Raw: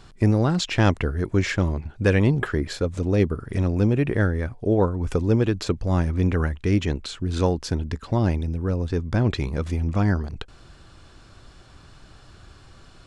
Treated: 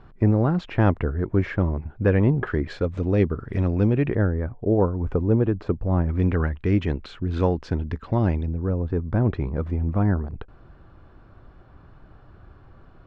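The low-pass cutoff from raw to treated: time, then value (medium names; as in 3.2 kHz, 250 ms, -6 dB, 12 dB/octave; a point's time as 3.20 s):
1.5 kHz
from 2.47 s 2.7 kHz
from 4.15 s 1.2 kHz
from 6.09 s 2.4 kHz
from 8.46 s 1.3 kHz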